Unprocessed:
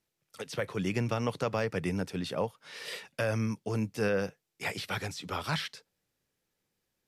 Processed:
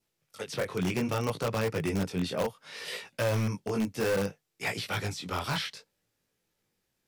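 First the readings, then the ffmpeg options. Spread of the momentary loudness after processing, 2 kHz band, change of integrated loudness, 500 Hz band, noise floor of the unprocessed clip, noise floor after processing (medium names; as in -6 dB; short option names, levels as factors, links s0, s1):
9 LU, +1.0 dB, +2.0 dB, +1.5 dB, -83 dBFS, -81 dBFS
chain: -filter_complex "[0:a]adynamicequalizer=threshold=0.00224:dfrequency=1700:dqfactor=4.6:tfrequency=1700:tqfactor=4.6:attack=5:release=100:ratio=0.375:range=2.5:mode=cutabove:tftype=bell,flanger=delay=17.5:depth=5:speed=0.64,asplit=2[s0][s1];[s1]aeval=exprs='(mod(22.4*val(0)+1,2)-1)/22.4':c=same,volume=0.422[s2];[s0][s2]amix=inputs=2:normalize=0,volume=1.33"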